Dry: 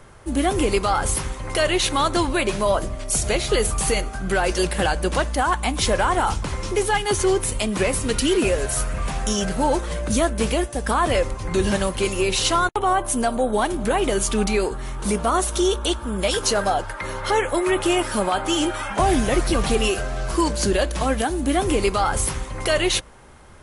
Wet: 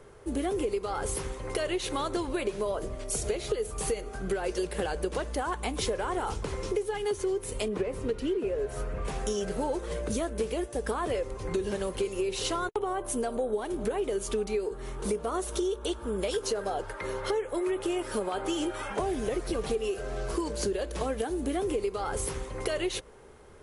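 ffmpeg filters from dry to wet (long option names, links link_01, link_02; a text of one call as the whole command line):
ffmpeg -i in.wav -filter_complex "[0:a]asettb=1/sr,asplit=3[link_01][link_02][link_03];[link_01]atrim=end=7.684[link_04];[link_02]atrim=start=7.68:end=9.05,asetpts=PTS-STARTPTS,afade=type=in:duration=0.004:curve=qsin,afade=type=out:start_time=1.366:duration=0.004:curve=qsin,lowpass=frequency=1700:poles=1[link_05];[link_03]atrim=start=9.046[link_06];[link_04][link_05]acrossfade=duration=0.004:curve1=hsin:curve2=qsin[link_07];[link_07][link_06]acrossfade=duration=0.004:curve1=qsin:curve2=hsin,equalizer=frequency=430:width_type=o:width=0.53:gain=13.5,acompressor=threshold=-18dB:ratio=10,volume=-8.5dB" out.wav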